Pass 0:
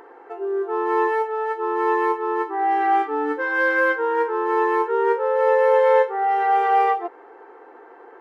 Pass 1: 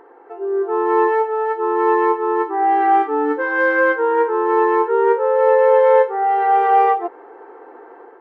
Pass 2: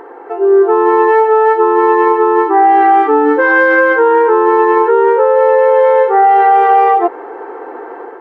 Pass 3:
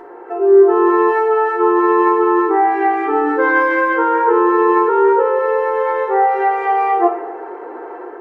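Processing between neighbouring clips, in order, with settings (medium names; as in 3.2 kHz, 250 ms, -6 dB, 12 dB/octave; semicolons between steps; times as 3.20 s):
treble shelf 2.2 kHz -11 dB; level rider gain up to 6 dB
loudness maximiser +14 dB; trim -1 dB
reverberation RT60 1.0 s, pre-delay 3 ms, DRR 0.5 dB; trim -6 dB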